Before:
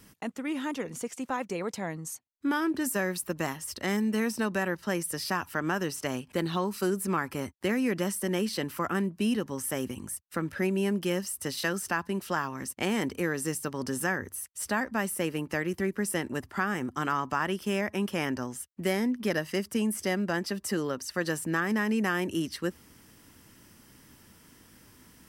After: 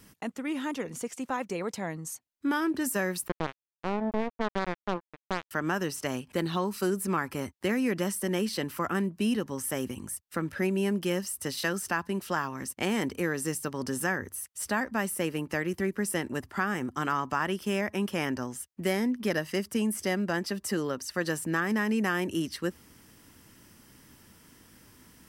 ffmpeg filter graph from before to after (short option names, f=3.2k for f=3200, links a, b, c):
-filter_complex "[0:a]asettb=1/sr,asplit=3[a][b][c];[a]atrim=end=3.284[d];[b]atrim=start=3.28:end=5.51,asetpts=PTS-STARTPTS,afade=t=in:d=0.004:c=qsin,afade=t=out:st=2.226:d=0.004:c=qsin,lowpass=f=1.3k:w=0.5412,lowpass=f=1.3k:w=1.3066,acrusher=bits=3:mix=0:aa=0.5[e];[c]atrim=start=5.506[f];[d][e]acrossfade=d=0.004:c1=hsin:c2=qsin[g];[g][f]acrossfade=d=0.004:c1=qsin:c2=hsin"